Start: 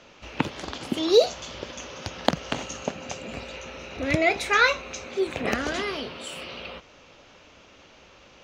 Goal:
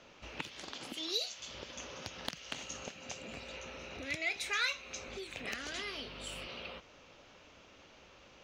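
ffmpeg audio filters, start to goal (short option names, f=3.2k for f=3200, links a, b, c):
-filter_complex "[0:a]asettb=1/sr,asplit=3[a][b][c];[a]atrim=end=5.084[d];[b]atrim=start=5.08:end=6.47,asetpts=PTS-STARTPTS,afade=t=in:d=0.004:c=qsin,afade=t=out:st=1.386:d=0.004:c=qsin,aeval=exprs='val(0)+0.00708*(sin(2*PI*50*n/s)+sin(2*PI*2*50*n/s)/2+sin(2*PI*3*50*n/s)/3+sin(2*PI*4*50*n/s)/4+sin(2*PI*5*50*n/s)/5)':c=same[e];[c]atrim=start=6.466[f];[d][e]acrossfade=d=0.004:c1=hsin:c2=qsin[g];[g][f]acrossfade=d=0.004:c1=qsin:c2=hsin,acrossover=split=1900[h][i];[h]acompressor=threshold=-38dB:ratio=6[j];[i]asoftclip=type=tanh:threshold=-16dB[k];[j][k]amix=inputs=2:normalize=0,asettb=1/sr,asplit=3[l][m][n];[l]atrim=end=0.634[o];[m]atrim=start=0.63:end=1.4,asetpts=PTS-STARTPTS,afade=t=in:d=0.004:c=qsin,afade=t=out:st=0.766:d=0.004:c=qsin,equalizer=f=66:t=o:w=1.4:g=-11[p];[n]atrim=start=1.396[q];[o][p]acrossfade=d=0.004:c1=hsin:c2=qsin[r];[r][q]acrossfade=d=0.004:c1=qsin:c2=hsin,volume=-6.5dB"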